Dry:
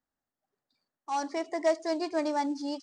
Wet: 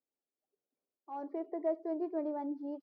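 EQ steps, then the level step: band-pass filter 420 Hz, Q 2.5; distance through air 250 m; +1.0 dB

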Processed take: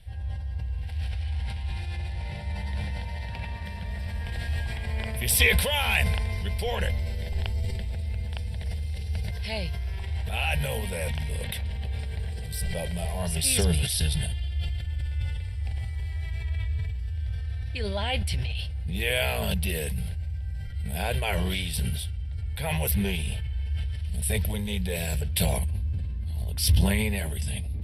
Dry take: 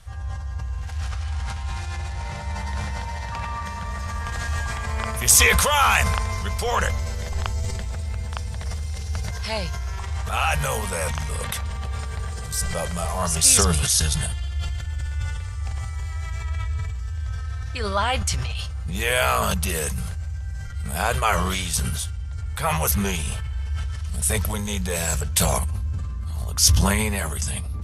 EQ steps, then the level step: static phaser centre 2.9 kHz, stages 4; -2.0 dB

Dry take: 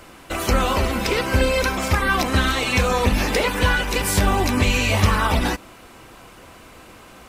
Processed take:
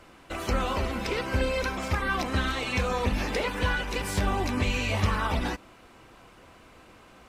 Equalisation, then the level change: treble shelf 8.5 kHz -11 dB; -8.0 dB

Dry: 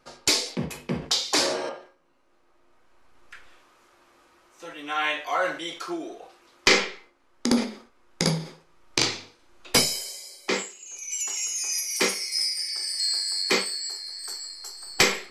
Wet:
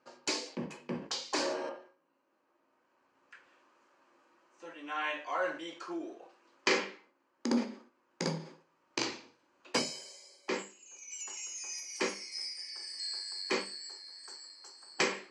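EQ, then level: cabinet simulation 270–7300 Hz, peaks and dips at 440 Hz -7 dB, 720 Hz -8 dB, 1.3 kHz -6 dB, 2.1 kHz -6 dB, 3.6 kHz -9 dB, 5.4 kHz -4 dB; treble shelf 2.7 kHz -9 dB; hum notches 50/100/150/200/250/300/350 Hz; -2.0 dB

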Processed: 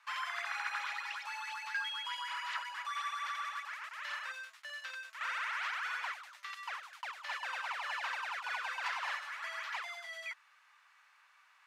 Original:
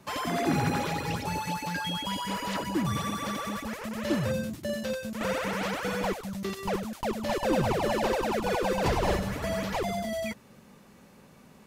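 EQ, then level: high-pass 1.1 kHz 24 dB/octave; band-pass filter 1.5 kHz, Q 0.88; 0.0 dB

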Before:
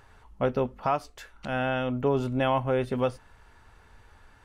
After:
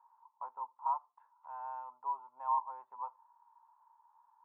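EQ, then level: Butterworth band-pass 960 Hz, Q 6.2; +1.5 dB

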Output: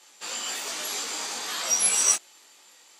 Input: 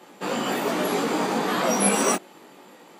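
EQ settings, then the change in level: band-pass filter 6.5 kHz, Q 1.4; +8.0 dB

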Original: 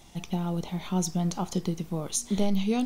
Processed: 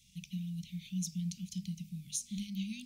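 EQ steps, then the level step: high-pass 75 Hz 6 dB/octave; Chebyshev band-stop 200–2400 Hz, order 4; hum notches 50/100/150/200 Hz; -7.5 dB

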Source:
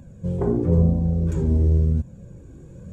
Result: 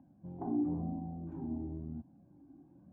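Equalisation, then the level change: two resonant band-passes 470 Hz, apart 1.4 oct; distance through air 150 m; -2.5 dB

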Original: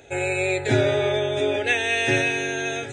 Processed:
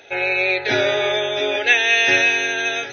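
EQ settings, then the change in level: high-pass 1.1 kHz 6 dB/octave; brick-wall FIR low-pass 6.3 kHz; +8.5 dB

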